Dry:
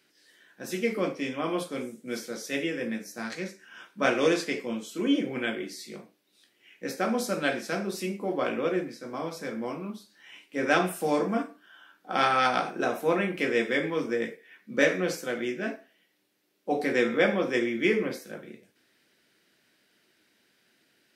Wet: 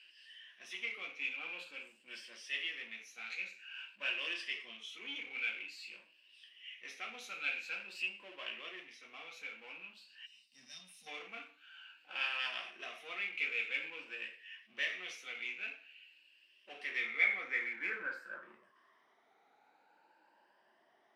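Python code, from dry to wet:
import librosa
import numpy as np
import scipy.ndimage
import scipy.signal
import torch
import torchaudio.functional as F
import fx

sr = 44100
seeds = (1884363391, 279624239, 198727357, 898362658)

y = fx.spec_ripple(x, sr, per_octave=1.3, drift_hz=0.49, depth_db=11)
y = fx.spec_box(y, sr, start_s=10.26, length_s=0.81, low_hz=270.0, high_hz=3600.0, gain_db=-26)
y = fx.power_curve(y, sr, exponent=0.7)
y = fx.filter_sweep_bandpass(y, sr, from_hz=2700.0, to_hz=840.0, start_s=16.84, end_s=19.31, q=6.7)
y = y * librosa.db_to_amplitude(-2.0)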